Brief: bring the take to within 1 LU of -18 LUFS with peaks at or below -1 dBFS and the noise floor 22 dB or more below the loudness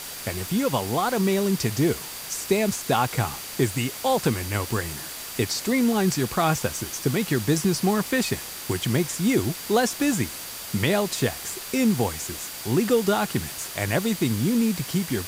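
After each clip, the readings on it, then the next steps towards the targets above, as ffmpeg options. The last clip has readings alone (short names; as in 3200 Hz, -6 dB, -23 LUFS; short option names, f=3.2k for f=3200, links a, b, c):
steady tone 4700 Hz; tone level -46 dBFS; noise floor -36 dBFS; noise floor target -47 dBFS; loudness -24.5 LUFS; peak -8.5 dBFS; loudness target -18.0 LUFS
-> -af "bandreject=f=4.7k:w=30"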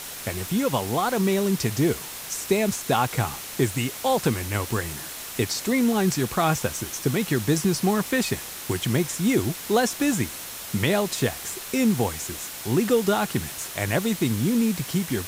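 steady tone none; noise floor -37 dBFS; noise floor target -47 dBFS
-> -af "afftdn=nr=10:nf=-37"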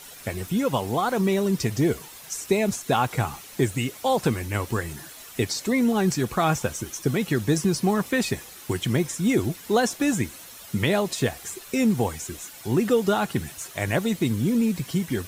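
noise floor -44 dBFS; noise floor target -47 dBFS
-> -af "afftdn=nr=6:nf=-44"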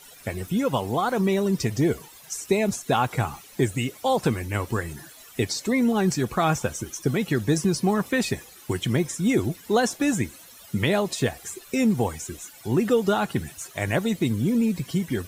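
noise floor -48 dBFS; loudness -25.0 LUFS; peak -8.5 dBFS; loudness target -18.0 LUFS
-> -af "volume=7dB"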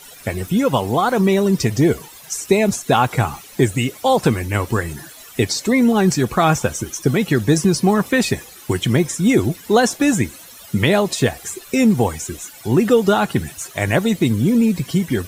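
loudness -18.0 LUFS; peak -1.5 dBFS; noise floor -41 dBFS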